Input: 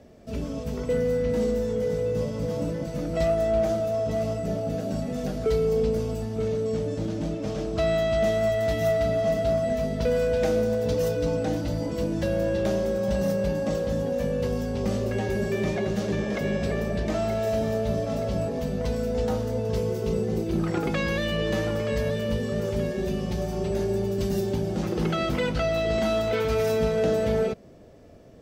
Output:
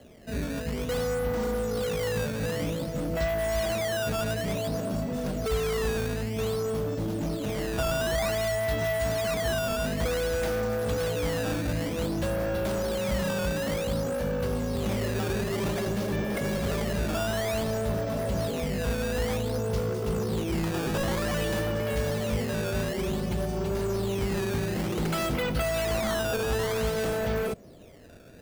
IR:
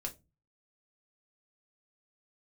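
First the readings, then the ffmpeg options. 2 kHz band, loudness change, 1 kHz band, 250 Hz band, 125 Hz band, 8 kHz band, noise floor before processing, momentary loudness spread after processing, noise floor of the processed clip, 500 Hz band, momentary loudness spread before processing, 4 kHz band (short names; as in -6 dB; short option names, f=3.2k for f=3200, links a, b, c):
+2.0 dB, -2.5 dB, -1.0 dB, -3.0 dB, -1.5 dB, +5.5 dB, -32 dBFS, 3 LU, -33 dBFS, -4.0 dB, 5 LU, +2.5 dB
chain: -filter_complex "[0:a]acrossover=split=120|1600|7000[a][b][c][d];[b]volume=27.5dB,asoftclip=hard,volume=-27.5dB[e];[a][e][c][d]amix=inputs=4:normalize=0,acrusher=samples=12:mix=1:aa=0.000001:lfo=1:lforange=19.2:lforate=0.54"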